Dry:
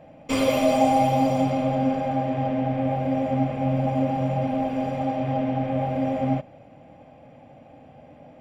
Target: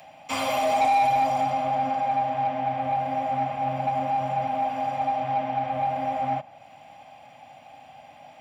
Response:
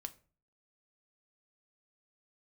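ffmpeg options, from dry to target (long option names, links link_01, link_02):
-filter_complex "[0:a]highpass=62,lowshelf=frequency=590:width_type=q:width=3:gain=-9,acrossover=split=250|500|2600[link_01][link_02][link_03][link_04];[link_04]acompressor=mode=upward:threshold=-48dB:ratio=2.5[link_05];[link_01][link_02][link_03][link_05]amix=inputs=4:normalize=0,asoftclip=type=tanh:threshold=-17dB"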